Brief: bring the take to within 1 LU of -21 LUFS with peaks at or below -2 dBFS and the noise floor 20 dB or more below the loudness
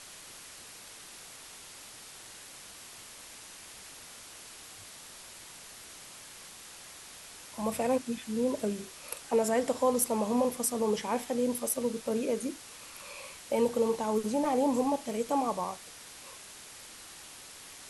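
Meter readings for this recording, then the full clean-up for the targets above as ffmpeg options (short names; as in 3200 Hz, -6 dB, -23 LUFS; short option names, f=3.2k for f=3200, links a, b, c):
noise floor -49 dBFS; noise floor target -51 dBFS; loudness -30.5 LUFS; peak -14.0 dBFS; loudness target -21.0 LUFS
-> -af "afftdn=nr=6:nf=-49"
-af "volume=9.5dB"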